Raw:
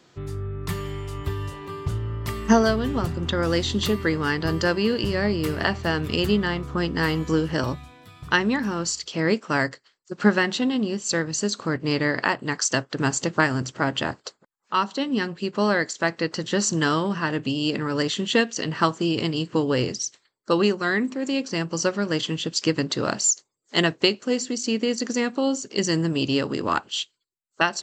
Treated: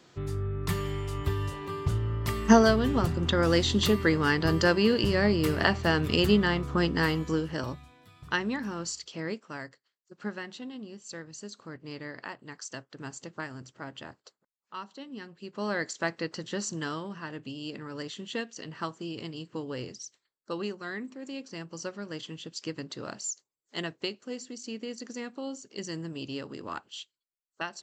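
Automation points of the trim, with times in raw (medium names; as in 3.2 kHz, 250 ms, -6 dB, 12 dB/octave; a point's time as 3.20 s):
6.85 s -1 dB
7.53 s -8.5 dB
9.01 s -8.5 dB
9.59 s -17.5 dB
15.32 s -17.5 dB
15.90 s -6 dB
17.12 s -14 dB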